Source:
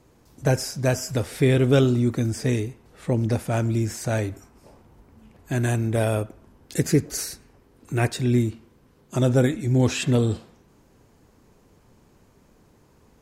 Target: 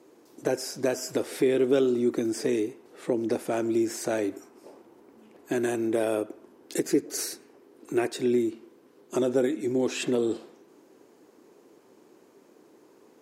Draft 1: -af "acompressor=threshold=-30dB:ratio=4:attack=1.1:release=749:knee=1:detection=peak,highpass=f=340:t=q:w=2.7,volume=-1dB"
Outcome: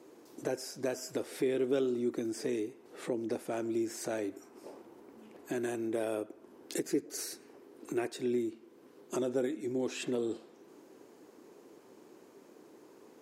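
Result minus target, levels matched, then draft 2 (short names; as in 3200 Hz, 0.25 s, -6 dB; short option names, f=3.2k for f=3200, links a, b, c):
compressor: peak gain reduction +8 dB
-af "acompressor=threshold=-19.5dB:ratio=4:attack=1.1:release=749:knee=1:detection=peak,highpass=f=340:t=q:w=2.7,volume=-1dB"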